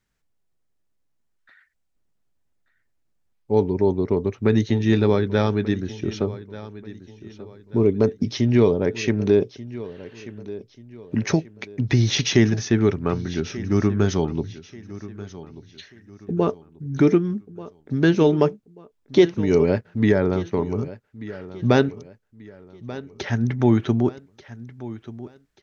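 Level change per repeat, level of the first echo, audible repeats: -9.0 dB, -16.5 dB, 3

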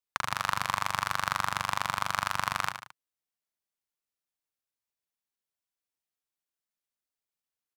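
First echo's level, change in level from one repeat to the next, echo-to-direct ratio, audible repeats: -9.0 dB, -6.0 dB, -8.0 dB, 3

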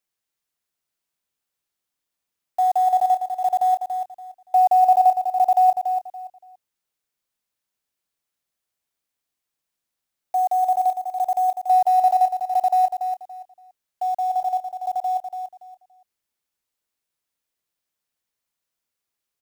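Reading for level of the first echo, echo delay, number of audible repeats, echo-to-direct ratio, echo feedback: -7.5 dB, 0.285 s, 3, -7.0 dB, 24%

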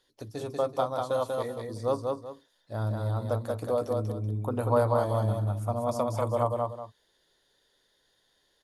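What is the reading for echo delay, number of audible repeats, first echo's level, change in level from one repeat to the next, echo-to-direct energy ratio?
0.19 s, 2, -3.0 dB, -11.0 dB, -2.5 dB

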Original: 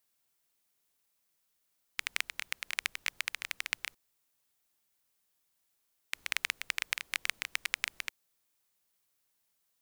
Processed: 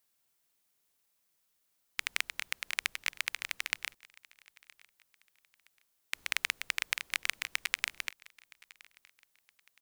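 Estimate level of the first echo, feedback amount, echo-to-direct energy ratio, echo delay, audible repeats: -23.5 dB, 31%, -23.0 dB, 0.968 s, 2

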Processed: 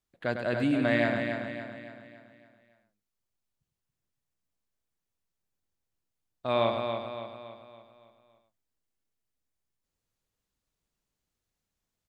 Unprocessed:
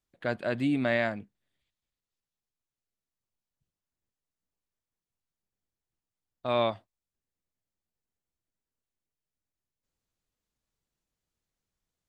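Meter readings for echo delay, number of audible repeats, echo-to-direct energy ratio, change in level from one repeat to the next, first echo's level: 0.102 s, 10, -2.5 dB, no steady repeat, -7.0 dB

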